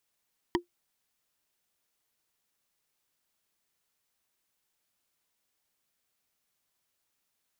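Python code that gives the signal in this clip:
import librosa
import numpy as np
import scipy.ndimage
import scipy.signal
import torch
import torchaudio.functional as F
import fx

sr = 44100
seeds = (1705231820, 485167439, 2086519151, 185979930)

y = fx.strike_wood(sr, length_s=0.45, level_db=-19.5, body='bar', hz=349.0, decay_s=0.12, tilt_db=1.5, modes=5)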